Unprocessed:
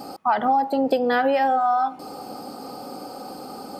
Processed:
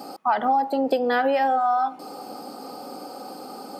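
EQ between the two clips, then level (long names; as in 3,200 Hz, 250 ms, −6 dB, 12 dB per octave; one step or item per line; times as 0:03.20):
high-pass filter 200 Hz 12 dB per octave
−1.0 dB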